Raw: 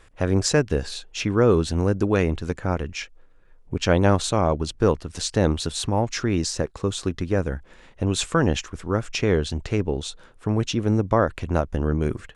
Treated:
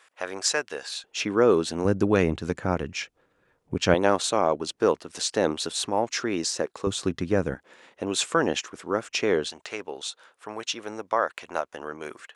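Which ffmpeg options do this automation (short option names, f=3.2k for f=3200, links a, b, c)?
-af "asetnsamples=n=441:p=0,asendcmd='1.04 highpass f 280;1.85 highpass f 120;3.94 highpass f 330;6.87 highpass f 130;7.55 highpass f 320;9.5 highpass f 720',highpass=780"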